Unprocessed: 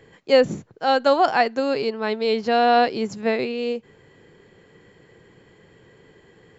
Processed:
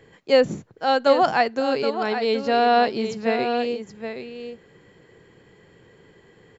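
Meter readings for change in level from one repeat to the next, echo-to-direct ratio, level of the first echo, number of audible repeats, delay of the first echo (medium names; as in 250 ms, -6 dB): no regular repeats, -9.0 dB, -9.0 dB, 1, 773 ms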